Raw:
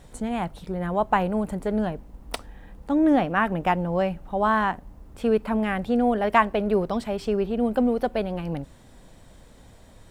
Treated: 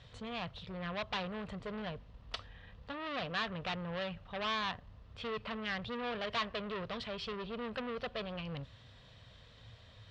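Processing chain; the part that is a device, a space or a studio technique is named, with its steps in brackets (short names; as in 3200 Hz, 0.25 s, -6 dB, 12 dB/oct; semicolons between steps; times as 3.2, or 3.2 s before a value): scooped metal amplifier (tube stage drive 27 dB, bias 0.3; speaker cabinet 89–3900 Hz, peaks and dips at 110 Hz +10 dB, 270 Hz +8 dB, 460 Hz +4 dB, 840 Hz -9 dB, 1500 Hz -5 dB, 2200 Hz -6 dB; passive tone stack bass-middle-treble 10-0-10); gain +7.5 dB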